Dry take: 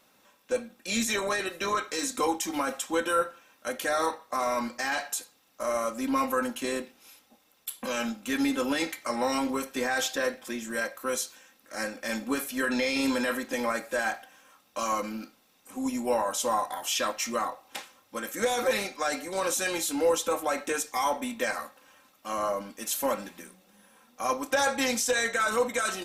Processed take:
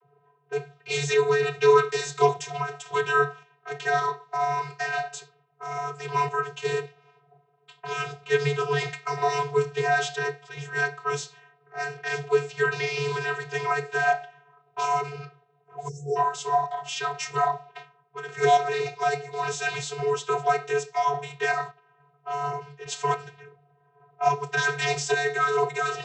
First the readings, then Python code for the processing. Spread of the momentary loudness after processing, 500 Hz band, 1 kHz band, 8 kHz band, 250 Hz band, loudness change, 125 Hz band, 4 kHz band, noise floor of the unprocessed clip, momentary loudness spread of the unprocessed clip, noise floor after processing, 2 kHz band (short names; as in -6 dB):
13 LU, +4.0 dB, +5.5 dB, -5.5 dB, under -10 dB, +3.0 dB, +16.0 dB, -1.0 dB, -65 dBFS, 11 LU, -65 dBFS, +3.5 dB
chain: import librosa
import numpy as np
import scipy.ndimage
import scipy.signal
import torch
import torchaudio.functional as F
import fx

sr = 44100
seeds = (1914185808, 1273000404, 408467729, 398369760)

y = fx.spec_erase(x, sr, start_s=15.88, length_s=0.28, low_hz=610.0, high_hz=5400.0)
y = fx.env_lowpass(y, sr, base_hz=810.0, full_db=-28.0)
y = fx.vocoder(y, sr, bands=32, carrier='square', carrier_hz=143.0)
y = fx.tremolo_random(y, sr, seeds[0], hz=3.5, depth_pct=55)
y = F.gain(torch.from_numpy(y), 7.0).numpy()